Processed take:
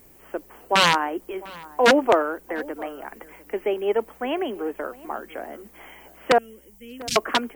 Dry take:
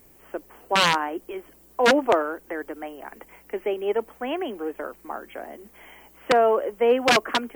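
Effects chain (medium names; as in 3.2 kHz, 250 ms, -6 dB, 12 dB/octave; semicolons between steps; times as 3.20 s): 6.38–7.16 s: Chebyshev band-stop 120–5800 Hz, order 2; echo from a far wall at 120 m, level -20 dB; trim +2 dB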